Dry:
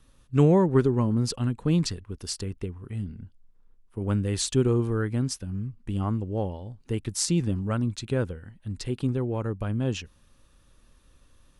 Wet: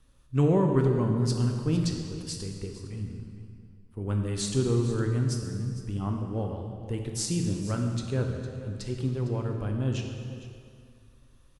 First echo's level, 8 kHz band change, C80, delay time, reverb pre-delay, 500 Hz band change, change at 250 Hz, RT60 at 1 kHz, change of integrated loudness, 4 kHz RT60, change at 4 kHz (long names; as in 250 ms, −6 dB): −15.5 dB, −3.5 dB, 5.0 dB, 457 ms, 9 ms, −2.5 dB, −2.5 dB, 2.2 s, −2.0 dB, 1.8 s, −3.0 dB